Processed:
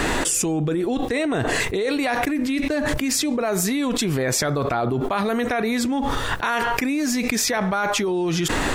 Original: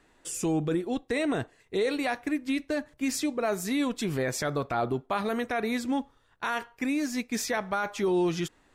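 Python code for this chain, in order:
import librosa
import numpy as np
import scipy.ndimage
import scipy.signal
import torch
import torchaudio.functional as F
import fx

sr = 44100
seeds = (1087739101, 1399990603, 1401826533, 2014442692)

y = fx.env_flatten(x, sr, amount_pct=100)
y = y * 10.0 ** (1.5 / 20.0)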